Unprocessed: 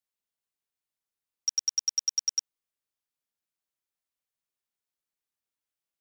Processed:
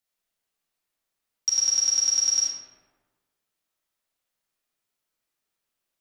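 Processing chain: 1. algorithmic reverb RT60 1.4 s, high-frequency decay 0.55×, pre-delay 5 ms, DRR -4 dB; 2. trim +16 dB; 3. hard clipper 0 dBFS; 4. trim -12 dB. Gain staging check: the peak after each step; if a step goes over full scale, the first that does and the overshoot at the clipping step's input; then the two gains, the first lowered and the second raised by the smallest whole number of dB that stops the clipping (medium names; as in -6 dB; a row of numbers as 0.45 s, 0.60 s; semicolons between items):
-17.5 dBFS, -1.5 dBFS, -1.5 dBFS, -13.5 dBFS; nothing clips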